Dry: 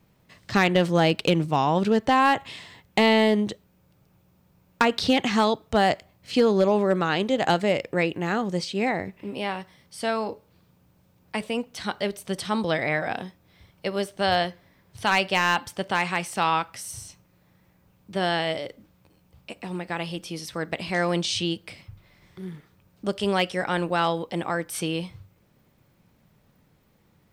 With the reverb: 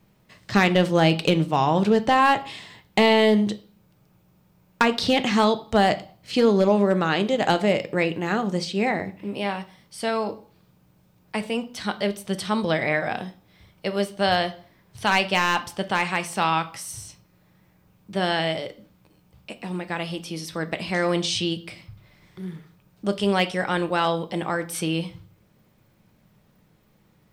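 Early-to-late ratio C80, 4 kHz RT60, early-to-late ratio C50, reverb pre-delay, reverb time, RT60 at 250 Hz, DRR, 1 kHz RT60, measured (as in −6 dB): 22.0 dB, 0.45 s, 17.5 dB, 5 ms, 0.45 s, 0.50 s, 10.0 dB, 0.45 s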